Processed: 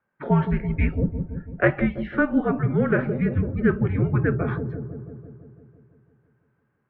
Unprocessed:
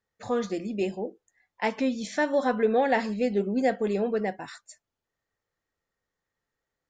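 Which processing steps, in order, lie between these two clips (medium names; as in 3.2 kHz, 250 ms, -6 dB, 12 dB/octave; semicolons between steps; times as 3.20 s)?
mistuned SSB -310 Hz 420–2600 Hz; feedback echo behind a low-pass 167 ms, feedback 66%, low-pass 440 Hz, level -6.5 dB; gain riding within 5 dB 0.5 s; trim +6.5 dB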